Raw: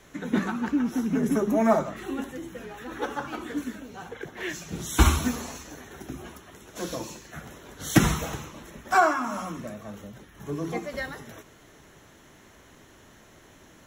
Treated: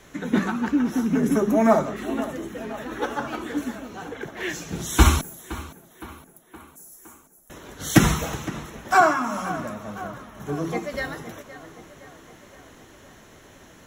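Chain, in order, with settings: 5.21–7.50 s: inverse Chebyshev band-stop 110–2400 Hz, stop band 70 dB; tape echo 516 ms, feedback 64%, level -14 dB, low-pass 3.2 kHz; trim +3.5 dB

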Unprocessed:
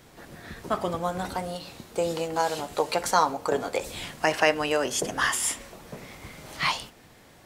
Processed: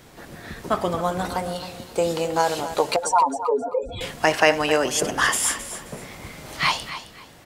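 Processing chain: 2.96–4.01 s: spectral contrast enhancement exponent 3.5; on a send: feedback delay 265 ms, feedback 24%, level -12.5 dB; on the sum: trim +4.5 dB

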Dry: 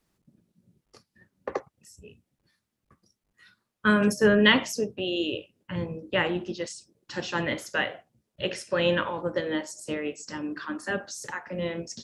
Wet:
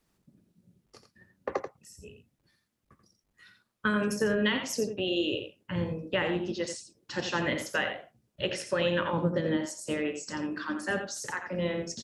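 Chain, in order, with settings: 9.13–9.57 s: peaking EQ 180 Hz +14 dB 1.4 oct; compression 10:1, threshold -24 dBFS, peak gain reduction 11 dB; delay 86 ms -8 dB

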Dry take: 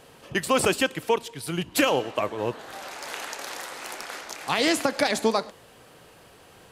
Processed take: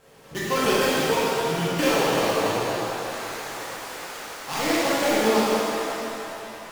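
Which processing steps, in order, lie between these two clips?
dead-time distortion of 0.14 ms; pitch-shifted reverb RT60 3.3 s, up +7 st, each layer -8 dB, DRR -10 dB; trim -7 dB

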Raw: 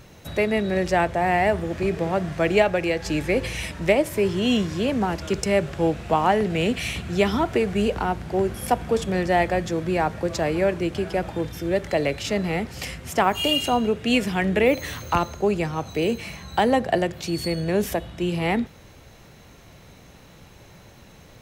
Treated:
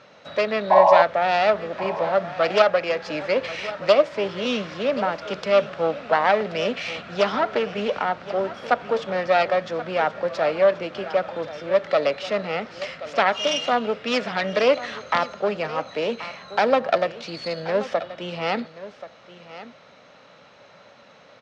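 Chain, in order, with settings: self-modulated delay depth 0.21 ms; painted sound noise, 0.70–1.03 s, 550–1100 Hz -17 dBFS; cabinet simulation 290–5000 Hz, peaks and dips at 350 Hz -10 dB, 580 Hz +7 dB, 1.3 kHz +7 dB; delay 1080 ms -15 dB

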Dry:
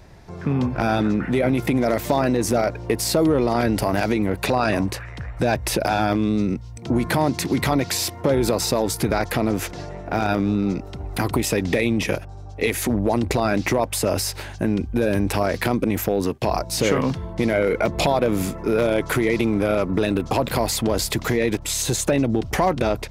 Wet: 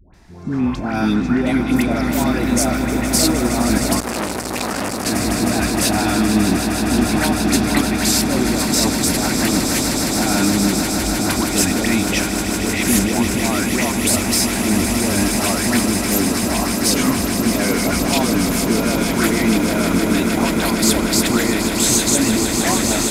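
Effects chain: peak limiter -14.5 dBFS, peak gain reduction 8.5 dB; graphic EQ 125/250/500/8000 Hz -9/+4/-9/+4 dB; echo with a slow build-up 155 ms, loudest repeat 8, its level -10 dB; level rider gain up to 6.5 dB; phase dispersion highs, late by 141 ms, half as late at 890 Hz; 4.00–5.06 s: transformer saturation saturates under 2 kHz

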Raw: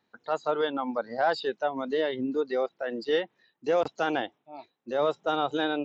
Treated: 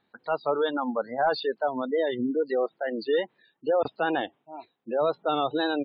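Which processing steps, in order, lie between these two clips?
wow and flutter 78 cents; in parallel at -9 dB: wavefolder -23.5 dBFS; on the sum: resampled via 11.025 kHz; spectral gate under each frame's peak -25 dB strong

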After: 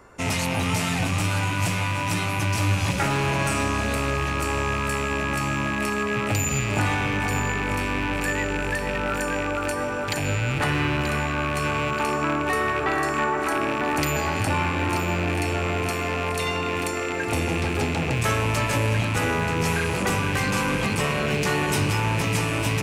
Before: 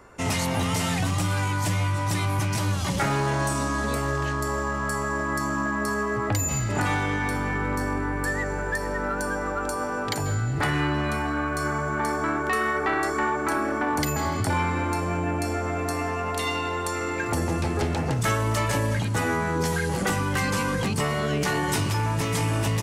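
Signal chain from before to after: rattle on loud lows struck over -32 dBFS, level -19 dBFS; on a send: echo whose repeats swap between lows and highs 466 ms, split 2.1 kHz, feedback 81%, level -8 dB

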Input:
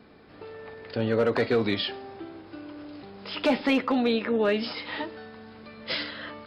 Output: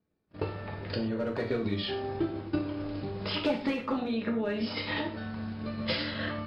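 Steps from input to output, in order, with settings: gate -47 dBFS, range -34 dB; bass shelf 250 Hz +11.5 dB; compression 2:1, threshold -31 dBFS, peak gain reduction 9 dB; peak limiter -26 dBFS, peak gain reduction 8.5 dB; transient shaper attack +9 dB, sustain -7 dB; gated-style reverb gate 150 ms falling, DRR 0.5 dB

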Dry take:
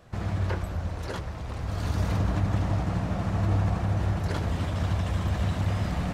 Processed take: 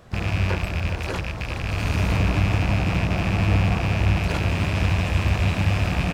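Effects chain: rattle on loud lows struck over -32 dBFS, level -23 dBFS; delay 412 ms -11 dB; harmony voices -7 st -12 dB, +12 st -16 dB; trim +4.5 dB

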